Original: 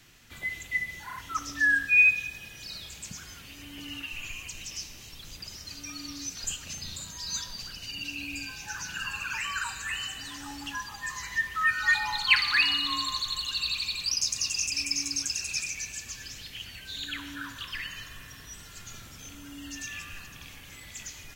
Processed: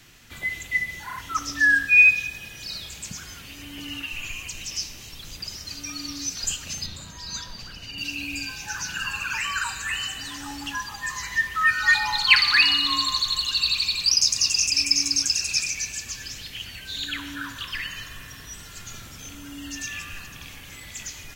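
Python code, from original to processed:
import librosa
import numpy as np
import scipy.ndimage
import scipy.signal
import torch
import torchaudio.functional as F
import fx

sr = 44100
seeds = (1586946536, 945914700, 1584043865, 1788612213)

y = fx.high_shelf(x, sr, hz=4200.0, db=-11.5, at=(6.86, 7.98))
y = fx.dynamic_eq(y, sr, hz=5000.0, q=2.7, threshold_db=-43.0, ratio=4.0, max_db=5)
y = F.gain(torch.from_numpy(y), 5.0).numpy()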